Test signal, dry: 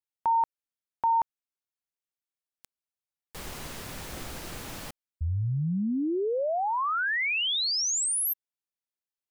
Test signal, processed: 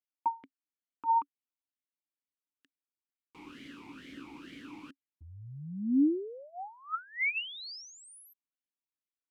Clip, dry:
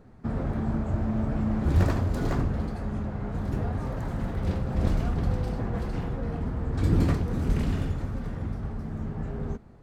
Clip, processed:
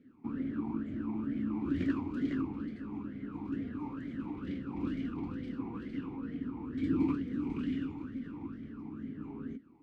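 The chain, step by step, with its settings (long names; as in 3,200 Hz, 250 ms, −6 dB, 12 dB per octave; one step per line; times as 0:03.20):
formant filter swept between two vowels i-u 2.2 Hz
level +5.5 dB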